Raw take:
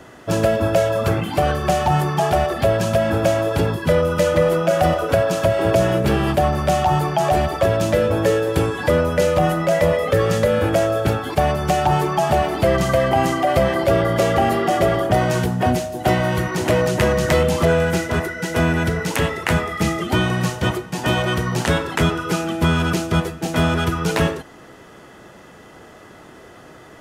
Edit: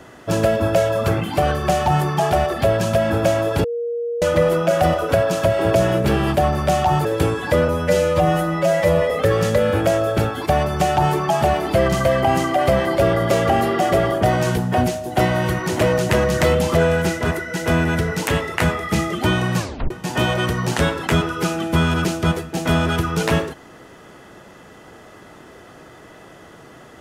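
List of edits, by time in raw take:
0:03.64–0:04.22: beep over 472 Hz −21 dBFS
0:07.05–0:08.41: remove
0:09.04–0:09.99: time-stretch 1.5×
0:20.47: tape stop 0.32 s

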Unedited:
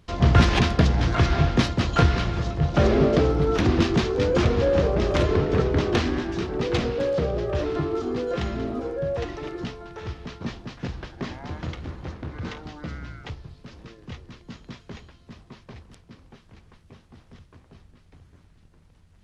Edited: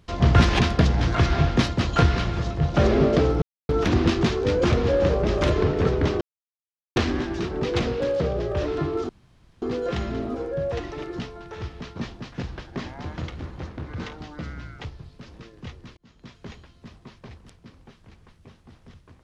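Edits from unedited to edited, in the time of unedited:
0:03.42: splice in silence 0.27 s
0:05.94: splice in silence 0.75 s
0:08.07: splice in room tone 0.53 s
0:14.42–0:14.92: fade in

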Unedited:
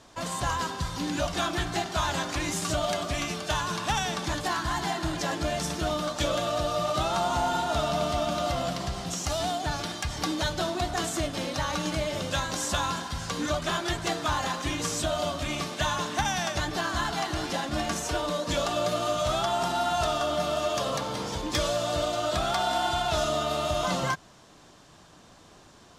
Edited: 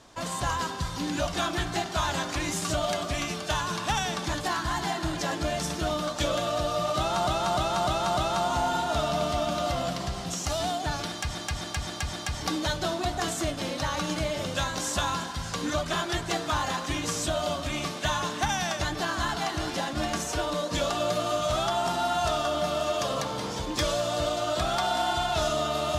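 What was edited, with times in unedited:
0:06.97–0:07.27: repeat, 5 plays
0:09.89–0:10.15: repeat, 5 plays

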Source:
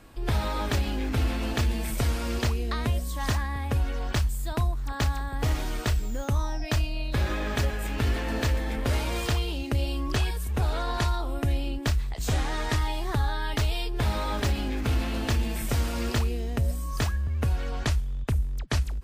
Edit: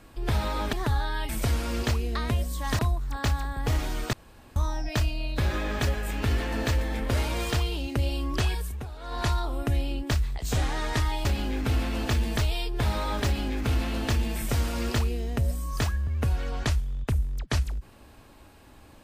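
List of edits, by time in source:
0:00.73–0:01.85: swap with 0:13.01–0:13.57
0:03.35–0:04.55: remove
0:05.89–0:06.32: fill with room tone
0:10.37–0:11.02: duck −14 dB, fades 0.26 s

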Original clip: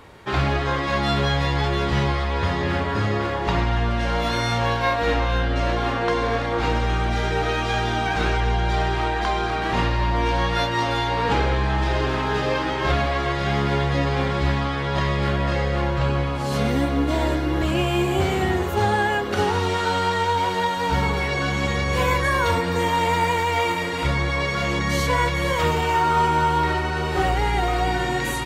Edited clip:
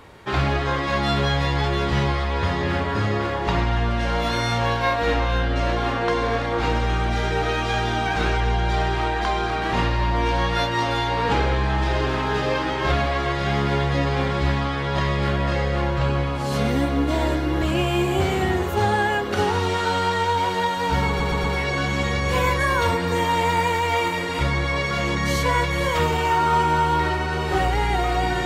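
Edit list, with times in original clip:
0:21.08: stutter 0.12 s, 4 plays

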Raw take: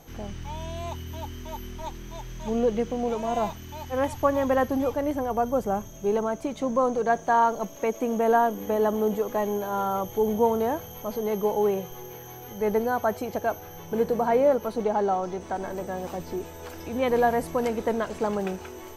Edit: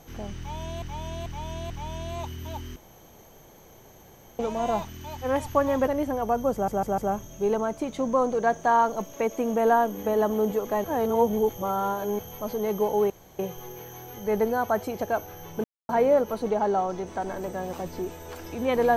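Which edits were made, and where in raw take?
0:00.38–0:00.82: repeat, 4 plays
0:01.44–0:03.07: fill with room tone
0:04.55–0:04.95: remove
0:05.61: stutter 0.15 s, 4 plays
0:09.47–0:10.82: reverse
0:11.73: splice in room tone 0.29 s
0:13.98–0:14.23: silence

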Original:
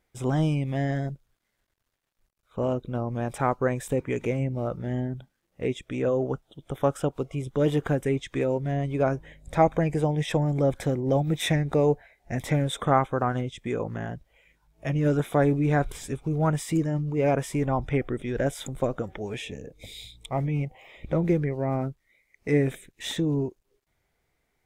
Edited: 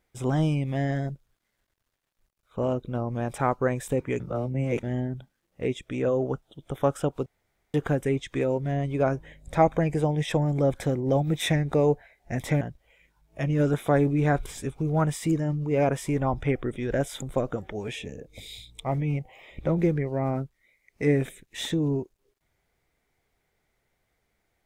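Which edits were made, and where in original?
0:04.20–0:04.83: reverse
0:07.26–0:07.74: fill with room tone
0:12.61–0:14.07: remove

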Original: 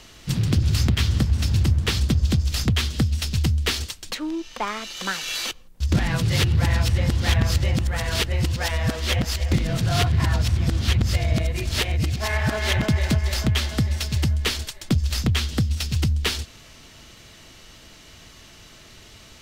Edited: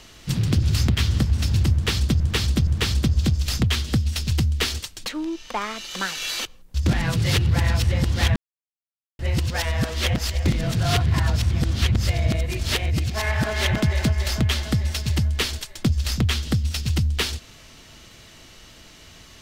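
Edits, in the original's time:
0:01.73–0:02.20: repeat, 3 plays
0:07.42–0:08.25: silence

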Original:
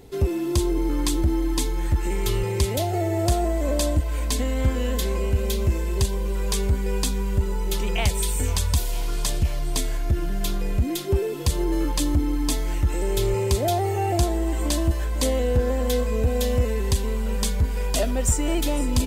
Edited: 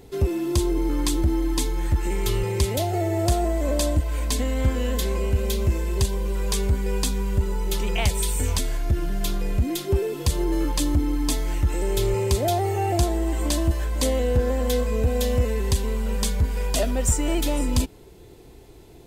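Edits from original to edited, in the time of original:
0:08.59–0:09.79: remove

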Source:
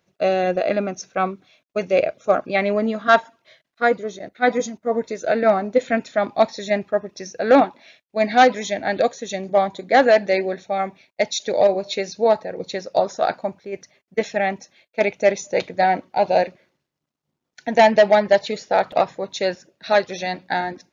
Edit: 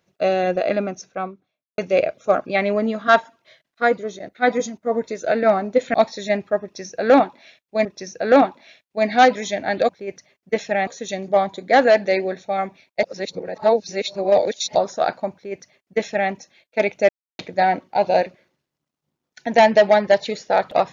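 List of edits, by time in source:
0:00.74–0:01.78: fade out and dull
0:05.94–0:06.35: remove
0:07.04–0:08.26: repeat, 2 plays
0:11.24–0:12.96: reverse
0:13.54–0:14.52: duplicate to 0:09.08
0:15.30–0:15.60: silence

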